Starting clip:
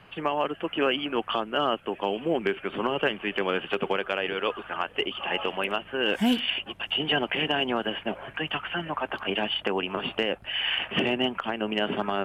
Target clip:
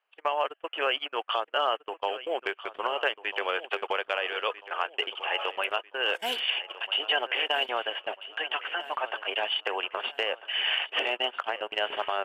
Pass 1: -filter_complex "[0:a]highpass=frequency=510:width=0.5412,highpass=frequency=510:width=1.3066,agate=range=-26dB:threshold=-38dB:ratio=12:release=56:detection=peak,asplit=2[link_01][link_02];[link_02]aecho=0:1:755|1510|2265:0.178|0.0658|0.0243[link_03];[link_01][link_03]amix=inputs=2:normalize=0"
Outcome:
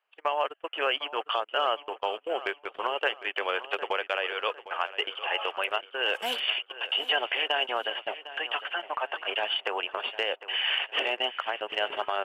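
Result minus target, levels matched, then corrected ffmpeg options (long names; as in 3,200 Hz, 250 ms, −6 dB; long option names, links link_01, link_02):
echo 540 ms early
-filter_complex "[0:a]highpass=frequency=510:width=0.5412,highpass=frequency=510:width=1.3066,agate=range=-26dB:threshold=-38dB:ratio=12:release=56:detection=peak,asplit=2[link_01][link_02];[link_02]aecho=0:1:1295|2590|3885:0.178|0.0658|0.0243[link_03];[link_01][link_03]amix=inputs=2:normalize=0"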